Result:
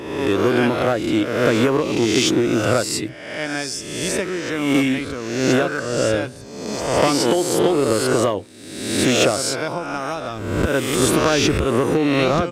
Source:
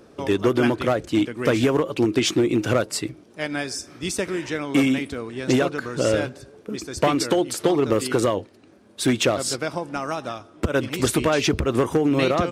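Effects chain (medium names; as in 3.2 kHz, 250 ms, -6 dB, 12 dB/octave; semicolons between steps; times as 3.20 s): reverse spectral sustain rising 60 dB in 1.07 s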